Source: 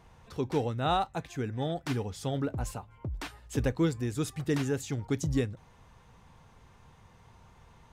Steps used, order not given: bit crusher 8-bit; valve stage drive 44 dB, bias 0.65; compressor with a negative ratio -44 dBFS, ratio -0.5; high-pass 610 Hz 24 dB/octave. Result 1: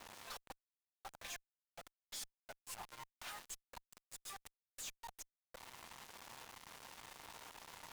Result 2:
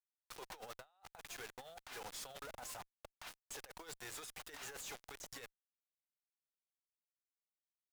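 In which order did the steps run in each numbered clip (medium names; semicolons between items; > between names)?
compressor with a negative ratio > high-pass > bit crusher > valve stage; high-pass > bit crusher > compressor with a negative ratio > valve stage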